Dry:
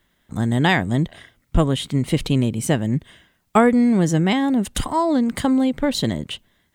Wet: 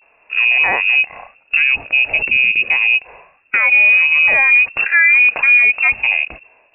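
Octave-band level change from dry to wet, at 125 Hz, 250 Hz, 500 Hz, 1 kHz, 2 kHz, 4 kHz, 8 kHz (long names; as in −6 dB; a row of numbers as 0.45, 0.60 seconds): below −20 dB, below −25 dB, −10.5 dB, −3.0 dB, +20.0 dB, +4.0 dB, below −40 dB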